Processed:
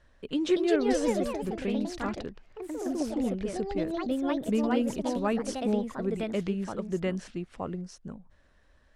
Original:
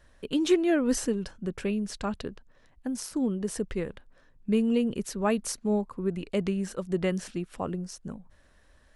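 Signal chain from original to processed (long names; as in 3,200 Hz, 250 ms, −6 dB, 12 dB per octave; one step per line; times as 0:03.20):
delay with pitch and tempo change per echo 289 ms, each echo +3 semitones, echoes 3
high-frequency loss of the air 64 metres
level −2.5 dB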